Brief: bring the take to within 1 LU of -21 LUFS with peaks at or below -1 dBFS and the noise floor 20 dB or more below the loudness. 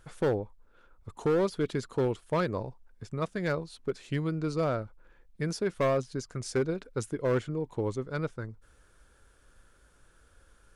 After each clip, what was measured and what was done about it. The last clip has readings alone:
clipped 1.5%; flat tops at -21.5 dBFS; loudness -31.5 LUFS; peak -21.5 dBFS; loudness target -21.0 LUFS
-> clip repair -21.5 dBFS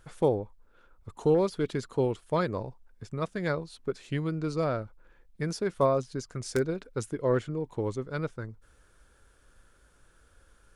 clipped 0.0%; loudness -30.5 LUFS; peak -12.5 dBFS; loudness target -21.0 LUFS
-> gain +9.5 dB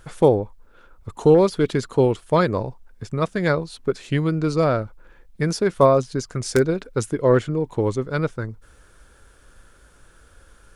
loudness -21.0 LUFS; peak -3.0 dBFS; noise floor -53 dBFS

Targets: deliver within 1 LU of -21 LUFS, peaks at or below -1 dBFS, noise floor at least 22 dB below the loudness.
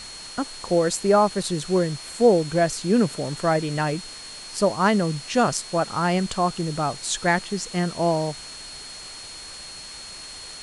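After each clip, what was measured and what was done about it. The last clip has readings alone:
steady tone 4300 Hz; tone level -39 dBFS; noise floor -39 dBFS; noise floor target -45 dBFS; loudness -23.0 LUFS; peak -6.5 dBFS; loudness target -21.0 LUFS
-> notch 4300 Hz, Q 30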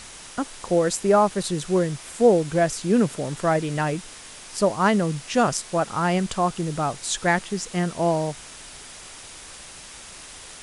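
steady tone none; noise floor -42 dBFS; noise floor target -45 dBFS
-> noise print and reduce 6 dB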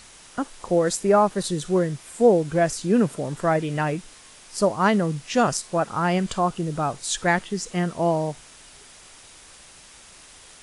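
noise floor -48 dBFS; loudness -23.0 LUFS; peak -7.0 dBFS; loudness target -21.0 LUFS
-> gain +2 dB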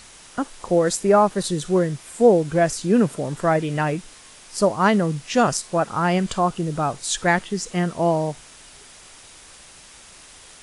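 loudness -21.0 LUFS; peak -5.0 dBFS; noise floor -46 dBFS

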